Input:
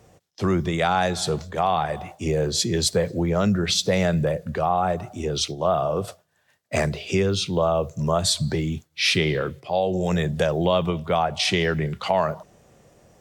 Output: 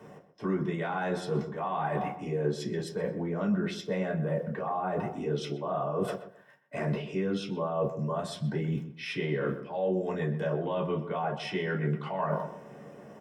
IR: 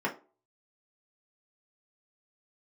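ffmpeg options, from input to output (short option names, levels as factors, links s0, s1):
-filter_complex "[0:a]areverse,acompressor=threshold=0.02:ratio=16,areverse,asplit=2[s0][s1];[s1]adelay=126,lowpass=f=1700:p=1,volume=0.282,asplit=2[s2][s3];[s3]adelay=126,lowpass=f=1700:p=1,volume=0.29,asplit=2[s4][s5];[s5]adelay=126,lowpass=f=1700:p=1,volume=0.29[s6];[s0][s2][s4][s6]amix=inputs=4:normalize=0[s7];[1:a]atrim=start_sample=2205,atrim=end_sample=3087[s8];[s7][s8]afir=irnorm=-1:irlink=0,volume=0.75"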